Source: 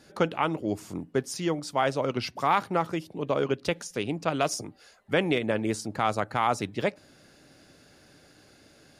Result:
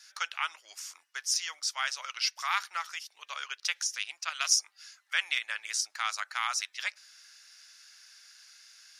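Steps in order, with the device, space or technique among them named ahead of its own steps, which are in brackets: headphones lying on a table (high-pass 1.4 kHz 24 dB/octave; peaking EQ 5.7 kHz +10.5 dB 0.52 oct); trim +1.5 dB

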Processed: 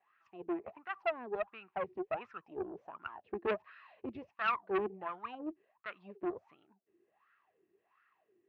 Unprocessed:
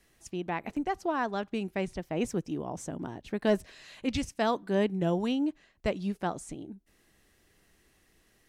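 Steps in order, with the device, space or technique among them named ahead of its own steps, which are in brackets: wah-wah guitar rig (wah-wah 1.4 Hz 340–1400 Hz, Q 14; valve stage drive 40 dB, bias 0.55; cabinet simulation 88–4300 Hz, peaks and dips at 100 Hz +5 dB, 280 Hz -6 dB, 520 Hz -5 dB, 1.1 kHz +5 dB, 1.8 kHz +5 dB, 2.6 kHz +10 dB); trim +13 dB

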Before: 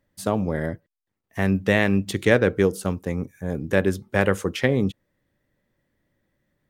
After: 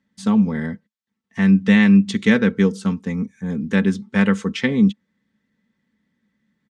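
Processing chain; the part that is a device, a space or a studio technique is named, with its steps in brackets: car door speaker (cabinet simulation 95–7600 Hz, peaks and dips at 210 Hz +10 dB, 420 Hz -6 dB, 660 Hz -10 dB, 3.5 kHz +3 dB); peaking EQ 2 kHz +2.5 dB 0.25 oct; band-stop 630 Hz, Q 15; comb 4.5 ms, depth 56%

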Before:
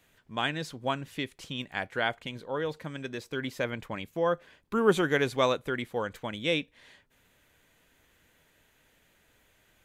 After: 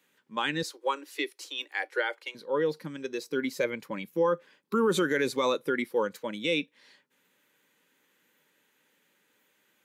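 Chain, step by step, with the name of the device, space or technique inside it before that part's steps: spectral noise reduction 9 dB; PA system with an anti-feedback notch (high-pass 180 Hz 24 dB/octave; Butterworth band-stop 680 Hz, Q 4.7; peak limiter -22 dBFS, peak gain reduction 11 dB); 0.63–2.35 s: steep high-pass 300 Hz 96 dB/octave; trim +5.5 dB

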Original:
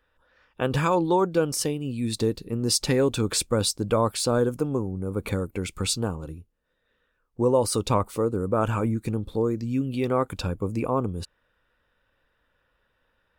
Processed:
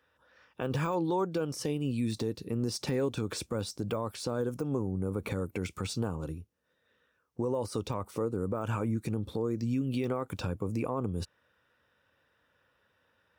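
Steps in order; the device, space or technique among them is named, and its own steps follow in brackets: broadcast voice chain (high-pass 75 Hz 24 dB/octave; de-esser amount 95%; compression 4:1, threshold -26 dBFS, peak gain reduction 9 dB; peaking EQ 5.7 kHz +6 dB 0.22 oct; peak limiter -22 dBFS, peak gain reduction 7.5 dB)

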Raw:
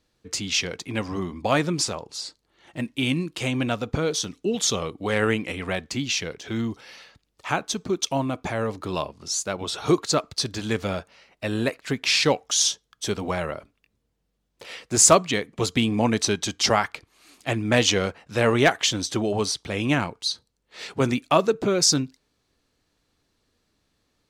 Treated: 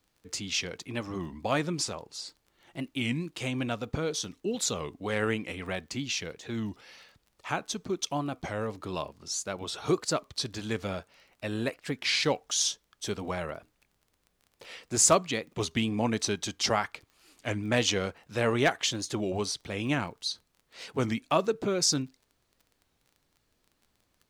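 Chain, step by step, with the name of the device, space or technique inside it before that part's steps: warped LP (warped record 33 1/3 rpm, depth 160 cents; crackle 22 per s -39 dBFS; pink noise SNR 44 dB); trim -6.5 dB

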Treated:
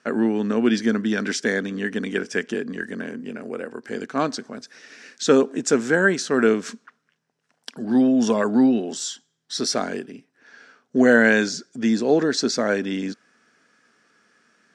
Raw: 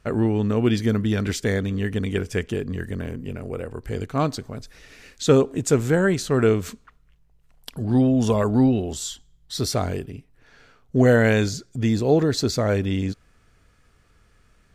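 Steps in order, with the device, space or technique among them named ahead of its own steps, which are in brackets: television speaker (cabinet simulation 210–9000 Hz, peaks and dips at 230 Hz +5 dB, 1.6 kHz +9 dB, 5.5 kHz +7 dB)

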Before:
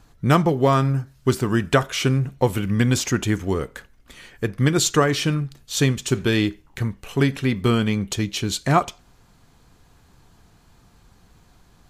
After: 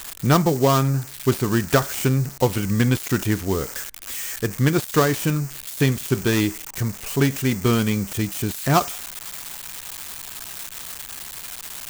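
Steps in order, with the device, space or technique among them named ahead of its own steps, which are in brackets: budget class-D amplifier (dead-time distortion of 0.14 ms; zero-crossing glitches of -15.5 dBFS)

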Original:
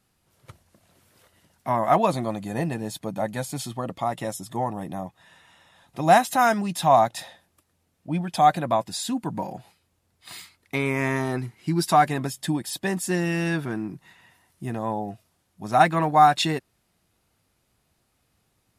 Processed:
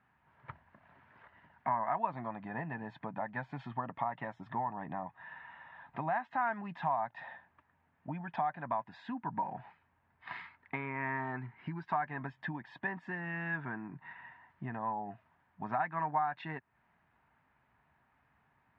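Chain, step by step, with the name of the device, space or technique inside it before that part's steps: bass amplifier (compression 5:1, threshold -35 dBFS, peak gain reduction 21 dB; cabinet simulation 72–2300 Hz, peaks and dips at 99 Hz -9 dB, 190 Hz -5 dB, 340 Hz -9 dB, 500 Hz -9 dB, 940 Hz +9 dB, 1.7 kHz +8 dB)

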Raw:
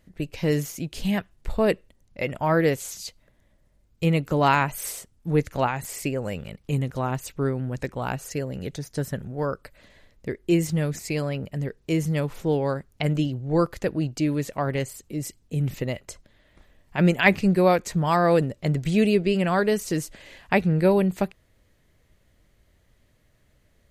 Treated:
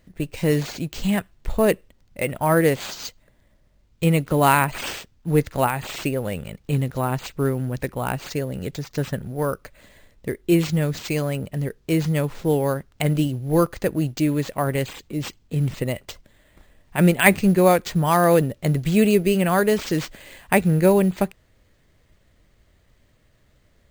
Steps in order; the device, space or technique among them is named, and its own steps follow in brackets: early companding sampler (sample-rate reducer 11 kHz, jitter 0%; companded quantiser 8-bit); trim +3 dB

